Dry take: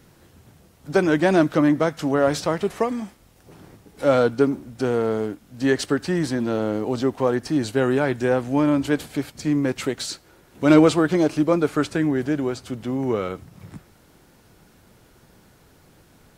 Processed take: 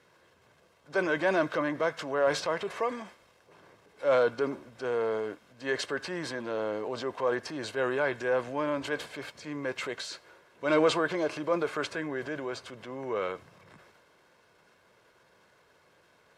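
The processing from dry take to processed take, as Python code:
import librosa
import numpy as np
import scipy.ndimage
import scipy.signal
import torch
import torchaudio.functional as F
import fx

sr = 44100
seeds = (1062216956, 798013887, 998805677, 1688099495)

y = x + 0.42 * np.pad(x, (int(1.9 * sr / 1000.0), 0))[:len(x)]
y = fx.transient(y, sr, attack_db=-4, sustain_db=5)
y = fx.bandpass_q(y, sr, hz=1400.0, q=0.51)
y = y * 10.0 ** (-4.0 / 20.0)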